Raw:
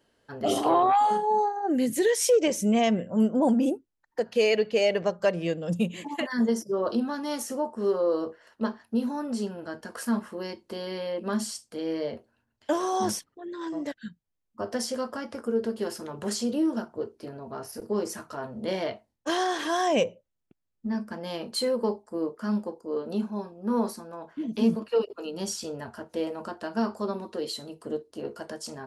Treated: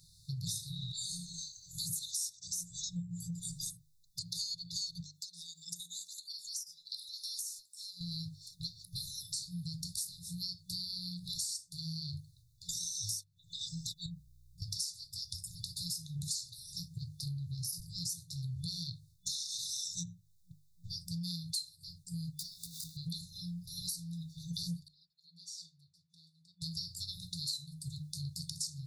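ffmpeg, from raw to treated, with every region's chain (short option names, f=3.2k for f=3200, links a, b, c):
-filter_complex "[0:a]asettb=1/sr,asplit=3[a][b][c];[a]atrim=end=5.004[d];[b]atrim=start=5:end=8.01,asetpts=PTS-STARTPTS,afade=t=in:d=0.004:c=qsin,afade=t=out:st=3.006:d=0.004:c=qsin,highpass=1.5k,acompressor=threshold=-47dB:ratio=10:attack=3.2:release=140:knee=1:detection=peak[e];[c]atrim=start=8.006[f];[d][e]acrossfade=d=0.004:c1=hsin:c2=qsin[g];[g][f]acrossfade=d=0.004:c1=qsin:c2=hsin,asettb=1/sr,asplit=3[h][i][j];[h]atrim=end=14.064[k];[i]atrim=start=14.06:end=14.62,asetpts=PTS-STARTPTS,afade=t=in:d=0.004:c=qsin,afade=t=out:st=0.556:d=0.004:c=qsin,acompressor=threshold=-58dB:ratio=1.5:attack=3.2:release=140:knee=1:detection=peak,aecho=1:1:5.8:0.37,atrim=end_sample=24696,aeval=exprs='val(0)+0.000158*(sin(2*PI*60*n/s)+sin(2*PI*2*60*n/s)/2+sin(2*PI*3*60*n/s)/3+sin(2*PI*4*60*n/s)/4+sin(2*PI*5*60*n/s)/5)':c=same[l];[j]atrim=start=14.616[m];[k][l]acrossfade=d=0.004:c1=hsin:c2=qsin[n];[n][m]acrossfade=d=0.004:c1=qsin:c2=hsin,asettb=1/sr,asplit=3[o][p][q];[o]atrim=end=22.394[r];[p]atrim=start=22.39:end=22.97,asetpts=PTS-STARTPTS,afade=t=in:d=0.004:c=qsin,afade=t=out:st=0.576:d=0.004:c=qsin,aeval=exprs='val(0)+0.5*0.00631*sgn(val(0))':c=same,highpass=f=320:p=1,acompressor=threshold=-37dB:ratio=12:attack=3.2:release=140:knee=1:detection=peak[s];[q]atrim=start=22.966[t];[r][s]acrossfade=d=0.004:c1=hsin:c2=qsin[u];[u][t]acrossfade=d=0.004:c1=qsin:c2=hsin,asettb=1/sr,asplit=3[v][w][x];[v]atrim=end=24.884[y];[w]atrim=start=24.88:end=26.62,asetpts=PTS-STARTPTS,afade=t=in:d=0.004:c=qsin,afade=t=out:st=1.736:d=0.004:c=qsin,bandpass=f=1.1k:t=q:w=4.7,aecho=1:1:4.3:0.71,atrim=end_sample=76734[z];[x]atrim=start=26.616[aa];[y][z]acrossfade=d=0.004:c1=hsin:c2=qsin[ab];[ab][aa]acrossfade=d=0.004:c1=qsin:c2=hsin,afftfilt=real='re*(1-between(b*sr/4096,180,3500))':imag='im*(1-between(b*sr/4096,180,3500))':win_size=4096:overlap=0.75,bandreject=f=50:t=h:w=6,bandreject=f=100:t=h:w=6,bandreject=f=150:t=h:w=6,acompressor=threshold=-52dB:ratio=8,volume=15.5dB"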